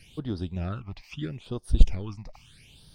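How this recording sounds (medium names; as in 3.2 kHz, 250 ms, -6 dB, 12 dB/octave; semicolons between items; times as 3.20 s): phasing stages 8, 0.77 Hz, lowest notch 420–2400 Hz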